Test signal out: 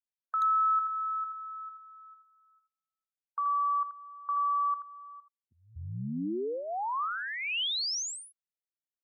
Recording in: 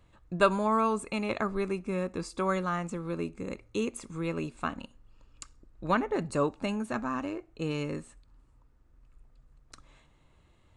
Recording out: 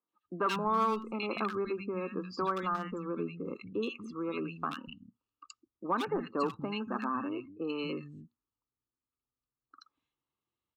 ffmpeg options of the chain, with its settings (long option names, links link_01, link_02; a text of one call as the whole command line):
ffmpeg -i in.wav -filter_complex "[0:a]highpass=150,equalizer=frequency=150:width_type=q:width=4:gain=-6,equalizer=frequency=600:width_type=q:width=4:gain=-9,equalizer=frequency=1200:width_type=q:width=4:gain=5,equalizer=frequency=2000:width_type=q:width=4:gain=-4,equalizer=frequency=3000:width_type=q:width=4:gain=3,lowpass=frequency=6200:width=0.5412,lowpass=frequency=6200:width=1.3066,asplit=2[link_01][link_02];[link_02]acompressor=threshold=-35dB:ratio=5,volume=2.5dB[link_03];[link_01][link_03]amix=inputs=2:normalize=0,afftdn=noise_reduction=26:noise_floor=-38,asoftclip=type=hard:threshold=-17.5dB,acrossover=split=190|1600[link_04][link_05][link_06];[link_06]adelay=80[link_07];[link_04]adelay=240[link_08];[link_08][link_05][link_07]amix=inputs=3:normalize=0,volume=-4.5dB" out.wav